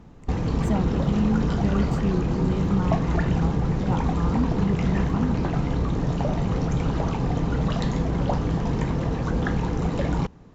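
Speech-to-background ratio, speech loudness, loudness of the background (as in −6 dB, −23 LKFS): −4.0 dB, −29.0 LKFS, −25.0 LKFS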